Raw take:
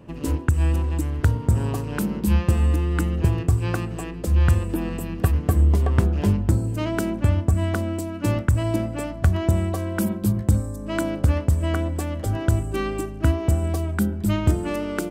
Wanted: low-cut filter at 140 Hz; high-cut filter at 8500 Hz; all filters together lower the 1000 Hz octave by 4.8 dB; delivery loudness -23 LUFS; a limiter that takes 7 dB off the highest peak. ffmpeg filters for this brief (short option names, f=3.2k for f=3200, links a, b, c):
-af "highpass=140,lowpass=8.5k,equalizer=f=1k:t=o:g=-6.5,volume=6dB,alimiter=limit=-11.5dB:level=0:latency=1"